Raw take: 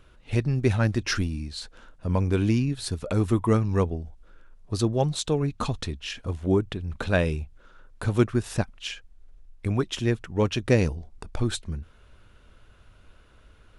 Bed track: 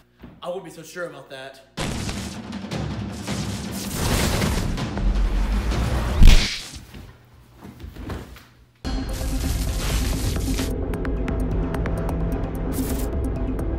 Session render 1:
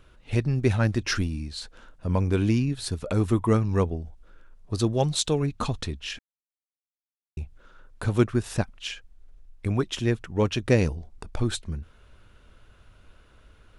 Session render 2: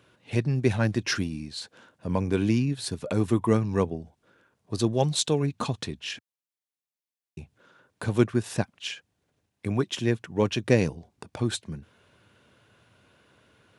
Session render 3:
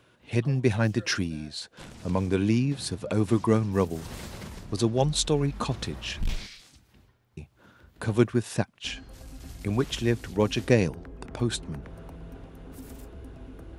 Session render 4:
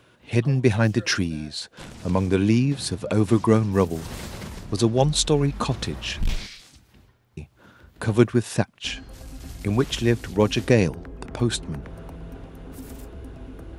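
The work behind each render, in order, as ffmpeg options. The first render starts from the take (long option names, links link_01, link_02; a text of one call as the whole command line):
ffmpeg -i in.wav -filter_complex "[0:a]asettb=1/sr,asplit=3[link_01][link_02][link_03];[link_01]atrim=end=4.764[link_04];[link_02]atrim=start=4.76:end=5.46,asetpts=PTS-STARTPTS,afade=type=in:duration=0.004:curve=qsin,afade=type=out:start_time=0.696:duration=0.004:curve=qsin,adynamicequalizer=threshold=0.00708:dfrequency=2000:dqfactor=0.7:tfrequency=2000:tqfactor=0.7:attack=5:release=100:ratio=0.375:range=2.5:mode=boostabove:tftype=highshelf[link_05];[link_03]atrim=start=5.456[link_06];[link_04][link_05]acrossfade=duration=0.004:curve1=hsin:curve2=qsin[link_07];[link_07][link_06]acrossfade=duration=0.004:curve1=qsin:curve2=hsin,asplit=3[link_08][link_09][link_10];[link_08]atrim=end=6.19,asetpts=PTS-STARTPTS,afade=type=out:start_time=6.186:duration=0.004:curve=hsin[link_11];[link_09]atrim=start=6.19:end=7.37,asetpts=PTS-STARTPTS,volume=0[link_12];[link_10]atrim=start=7.37,asetpts=PTS-STARTPTS,afade=type=in:duration=0.004:curve=hsin[link_13];[link_11][link_12][link_13]concat=n=3:v=0:a=1" out.wav
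ffmpeg -i in.wav -af "highpass=frequency=110:width=0.5412,highpass=frequency=110:width=1.3066,bandreject=frequency=1300:width=11" out.wav
ffmpeg -i in.wav -i bed.wav -filter_complex "[1:a]volume=-18.5dB[link_01];[0:a][link_01]amix=inputs=2:normalize=0" out.wav
ffmpeg -i in.wav -af "volume=4.5dB,alimiter=limit=-3dB:level=0:latency=1" out.wav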